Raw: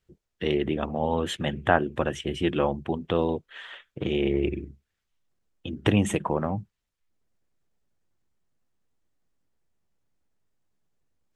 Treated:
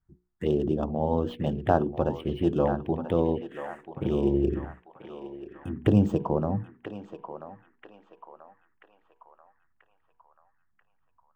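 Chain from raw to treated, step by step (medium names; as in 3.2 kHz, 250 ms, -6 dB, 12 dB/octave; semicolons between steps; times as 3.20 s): median filter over 9 samples; tilt shelf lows +5.5 dB, about 1.5 kHz; touch-sensitive phaser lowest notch 490 Hz, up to 2.1 kHz, full sweep at -19 dBFS; hum notches 60/120/180/240/300/360/420/480 Hz; band-passed feedback delay 986 ms, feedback 59%, band-pass 1.5 kHz, level -6.5 dB; trim -3 dB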